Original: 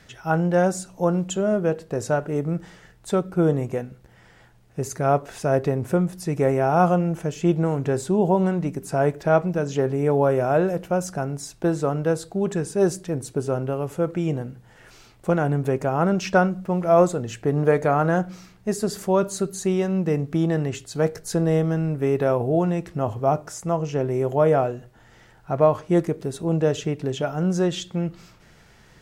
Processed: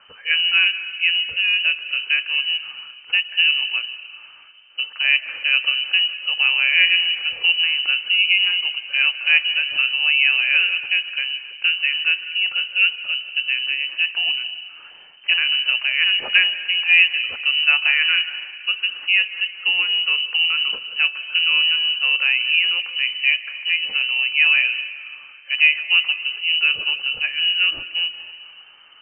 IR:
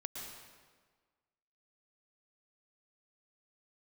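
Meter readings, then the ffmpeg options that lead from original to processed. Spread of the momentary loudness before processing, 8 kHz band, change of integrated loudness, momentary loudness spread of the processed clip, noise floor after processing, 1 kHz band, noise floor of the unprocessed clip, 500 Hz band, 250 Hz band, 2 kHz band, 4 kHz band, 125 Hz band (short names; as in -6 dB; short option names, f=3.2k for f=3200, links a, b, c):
9 LU, under -40 dB, +6.0 dB, 9 LU, -45 dBFS, -15.0 dB, -53 dBFS, under -25 dB, under -35 dB, +19.0 dB, +26.5 dB, under -35 dB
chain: -filter_complex "[0:a]asplit=2[a][b];[1:a]atrim=start_sample=2205,asetrate=33075,aresample=44100[c];[b][c]afir=irnorm=-1:irlink=0,volume=-9dB[d];[a][d]amix=inputs=2:normalize=0,lowpass=f=2.6k:t=q:w=0.5098,lowpass=f=2.6k:t=q:w=0.6013,lowpass=f=2.6k:t=q:w=0.9,lowpass=f=2.6k:t=q:w=2.563,afreqshift=-3100"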